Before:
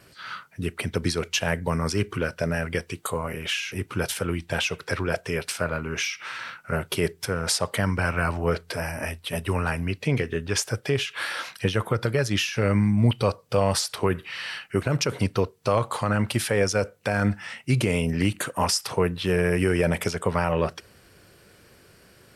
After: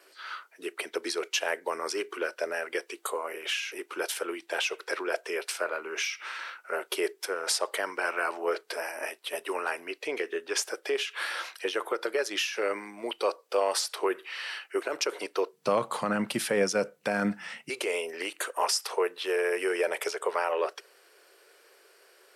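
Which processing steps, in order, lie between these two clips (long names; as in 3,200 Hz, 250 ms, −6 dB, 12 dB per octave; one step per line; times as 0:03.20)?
Chebyshev high-pass filter 350 Hz, order 4, from 0:15.52 160 Hz, from 0:17.68 390 Hz
level −2.5 dB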